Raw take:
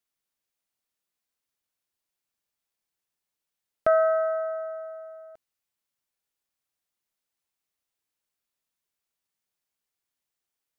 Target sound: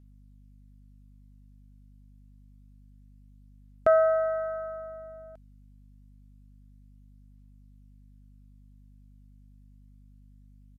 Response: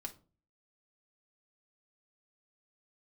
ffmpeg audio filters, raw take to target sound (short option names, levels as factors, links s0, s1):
-af "aphaser=in_gain=1:out_gain=1:delay=1.4:decay=0.21:speed=0.27:type=triangular,aeval=exprs='val(0)+0.00251*(sin(2*PI*50*n/s)+sin(2*PI*2*50*n/s)/2+sin(2*PI*3*50*n/s)/3+sin(2*PI*4*50*n/s)/4+sin(2*PI*5*50*n/s)/5)':c=same,aresample=32000,aresample=44100,volume=0.891"